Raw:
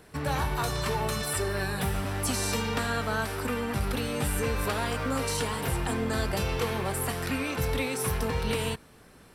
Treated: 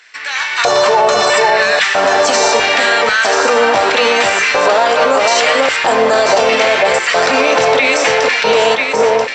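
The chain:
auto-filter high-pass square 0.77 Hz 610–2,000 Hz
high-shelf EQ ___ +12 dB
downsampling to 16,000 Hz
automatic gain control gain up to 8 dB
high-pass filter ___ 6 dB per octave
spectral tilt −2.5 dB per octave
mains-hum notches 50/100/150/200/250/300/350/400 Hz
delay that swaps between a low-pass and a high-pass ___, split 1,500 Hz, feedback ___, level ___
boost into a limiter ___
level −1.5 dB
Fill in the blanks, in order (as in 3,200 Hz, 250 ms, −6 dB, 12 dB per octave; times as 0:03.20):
4,700 Hz, 63 Hz, 493 ms, 56%, −3 dB, +14 dB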